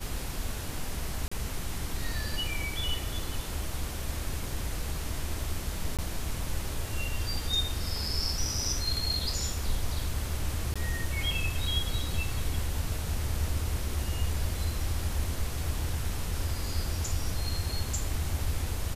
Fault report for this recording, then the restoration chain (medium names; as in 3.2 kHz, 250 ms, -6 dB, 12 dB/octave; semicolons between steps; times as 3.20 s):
1.28–1.31 s: dropout 35 ms
5.97–5.99 s: dropout 17 ms
10.74–10.76 s: dropout 16 ms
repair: interpolate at 1.28 s, 35 ms; interpolate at 5.97 s, 17 ms; interpolate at 10.74 s, 16 ms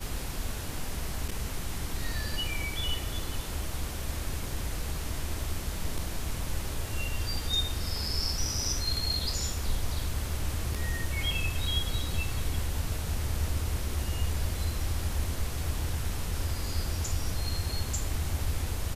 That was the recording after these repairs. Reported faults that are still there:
nothing left